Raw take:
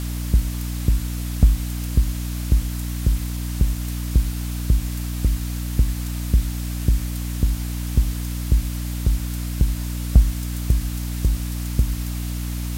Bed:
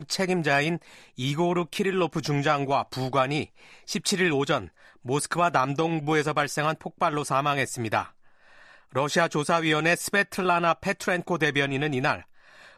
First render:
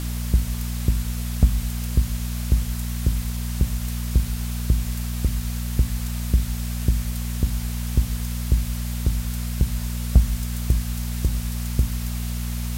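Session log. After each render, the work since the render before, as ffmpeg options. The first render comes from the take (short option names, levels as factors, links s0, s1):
-af "bandreject=f=50:t=h:w=6,bandreject=f=100:t=h:w=6,bandreject=f=150:t=h:w=6,bandreject=f=200:t=h:w=6,bandreject=f=250:t=h:w=6,bandreject=f=300:t=h:w=6"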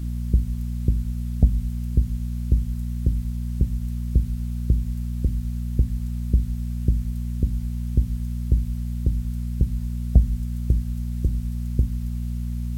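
-af "afftdn=nr=17:nf=-29"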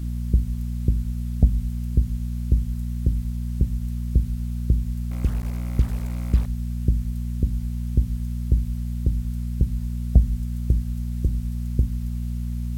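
-filter_complex "[0:a]asettb=1/sr,asplit=3[s0][s1][s2];[s0]atrim=end=5.114[s3];[s1]atrim=start=5.11:end=6.46,asetpts=PTS-STARTPTS,afade=t=in:d=0.004:c=qsin,afade=t=out:st=1.346:d=0.004:c=qsin,acrusher=bits=5:mix=0:aa=0.5[s4];[s2]atrim=start=6.456[s5];[s3][s4]acrossfade=d=0.004:c1=hsin:c2=qsin[s6];[s6][s5]acrossfade=d=0.004:c1=qsin:c2=hsin"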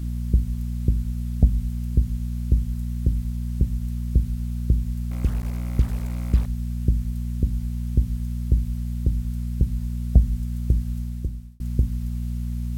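-filter_complex "[0:a]asplit=2[s0][s1];[s0]atrim=end=11.6,asetpts=PTS-STARTPTS,afade=t=out:st=10.96:d=0.64[s2];[s1]atrim=start=11.6,asetpts=PTS-STARTPTS,afade=t=in:d=0.004:c=hsin[s3];[s2][s3]concat=n=2:v=0:a=1"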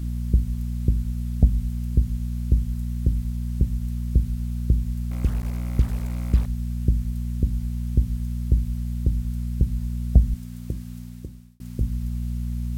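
-filter_complex "[0:a]asettb=1/sr,asplit=3[s0][s1][s2];[s0]atrim=end=10.344[s3];[s1]atrim=start=10.34:end=11.81,asetpts=PTS-STARTPTS,afade=t=in:d=0.004:c=qsin,afade=t=out:st=1.466:d=0.004:c=qsin,highpass=f=230:p=1[s4];[s2]atrim=start=11.806[s5];[s3][s4]acrossfade=d=0.004:c1=hsin:c2=qsin[s6];[s6][s5]acrossfade=d=0.004:c1=qsin:c2=hsin"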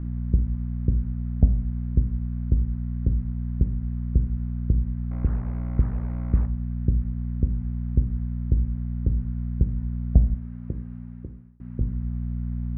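-af "lowpass=f=1700:w=0.5412,lowpass=f=1700:w=1.3066,bandreject=f=63.02:t=h:w=4,bandreject=f=126.04:t=h:w=4,bandreject=f=189.06:t=h:w=4,bandreject=f=252.08:t=h:w=4,bandreject=f=315.1:t=h:w=4,bandreject=f=378.12:t=h:w=4,bandreject=f=441.14:t=h:w=4,bandreject=f=504.16:t=h:w=4,bandreject=f=567.18:t=h:w=4,bandreject=f=630.2:t=h:w=4,bandreject=f=693.22:t=h:w=4,bandreject=f=756.24:t=h:w=4,bandreject=f=819.26:t=h:w=4,bandreject=f=882.28:t=h:w=4,bandreject=f=945.3:t=h:w=4,bandreject=f=1008.32:t=h:w=4,bandreject=f=1071.34:t=h:w=4,bandreject=f=1134.36:t=h:w=4,bandreject=f=1197.38:t=h:w=4,bandreject=f=1260.4:t=h:w=4,bandreject=f=1323.42:t=h:w=4,bandreject=f=1386.44:t=h:w=4,bandreject=f=1449.46:t=h:w=4,bandreject=f=1512.48:t=h:w=4,bandreject=f=1575.5:t=h:w=4,bandreject=f=1638.52:t=h:w=4,bandreject=f=1701.54:t=h:w=4,bandreject=f=1764.56:t=h:w=4"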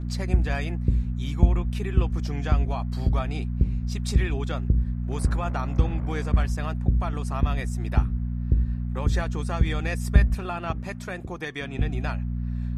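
-filter_complex "[1:a]volume=0.335[s0];[0:a][s0]amix=inputs=2:normalize=0"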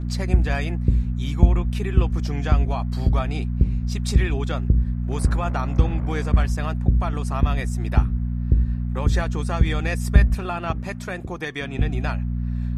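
-af "volume=1.5,alimiter=limit=0.708:level=0:latency=1"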